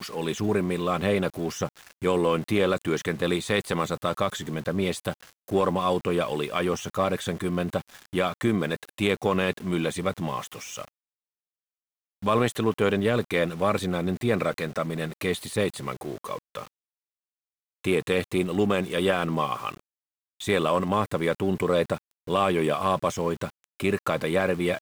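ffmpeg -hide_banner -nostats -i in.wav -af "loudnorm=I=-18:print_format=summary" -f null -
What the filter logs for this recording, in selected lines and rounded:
Input Integrated:    -26.6 LUFS
Input True Peak:      -9.6 dBTP
Input LRA:             3.8 LU
Input Threshold:     -36.8 LUFS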